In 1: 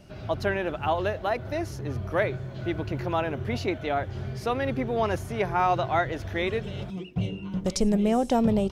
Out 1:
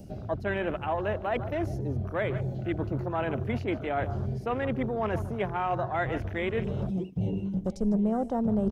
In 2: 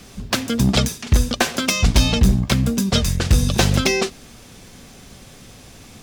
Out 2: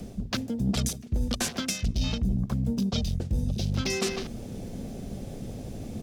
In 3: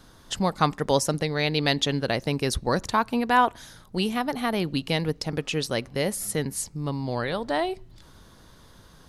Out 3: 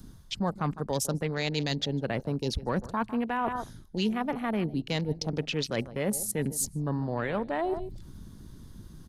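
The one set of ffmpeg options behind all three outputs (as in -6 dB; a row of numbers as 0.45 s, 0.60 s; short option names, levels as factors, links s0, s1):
-filter_complex "[0:a]highshelf=f=8400:g=5,aecho=1:1:152:0.141,acrossover=split=220|5100[s0][s1][s2];[s1]alimiter=limit=0.2:level=0:latency=1:release=399[s3];[s2]acompressor=mode=upward:threshold=0.00316:ratio=2.5[s4];[s0][s3][s4]amix=inputs=3:normalize=0,volume=2.51,asoftclip=hard,volume=0.398,areverse,acompressor=threshold=0.0178:ratio=4,areverse,afwtdn=0.00562,equalizer=f=210:t=o:w=0.21:g=4,volume=2.24"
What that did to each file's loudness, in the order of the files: -2.5 LU, -11.5 LU, -5.0 LU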